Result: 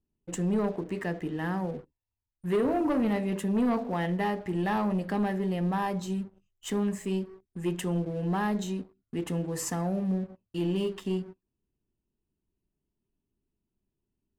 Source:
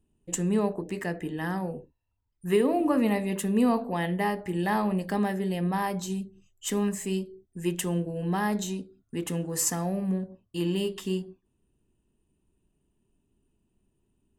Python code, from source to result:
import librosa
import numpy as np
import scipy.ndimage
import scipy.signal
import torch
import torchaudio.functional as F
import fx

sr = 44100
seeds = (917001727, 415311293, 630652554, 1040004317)

y = fx.high_shelf(x, sr, hz=4300.0, db=-11.5)
y = fx.leveller(y, sr, passes=2)
y = F.gain(torch.from_numpy(y), -7.0).numpy()